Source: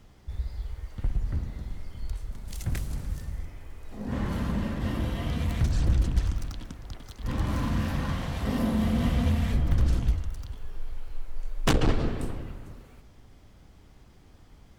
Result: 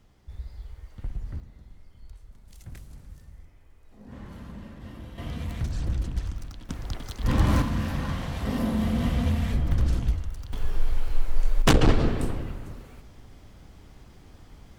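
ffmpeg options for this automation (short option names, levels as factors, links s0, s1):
-af "asetnsamples=n=441:p=0,asendcmd='1.4 volume volume -12.5dB;5.18 volume volume -4.5dB;6.69 volume volume 7dB;7.62 volume volume 0dB;10.53 volume volume 11dB;11.62 volume volume 4.5dB',volume=0.531"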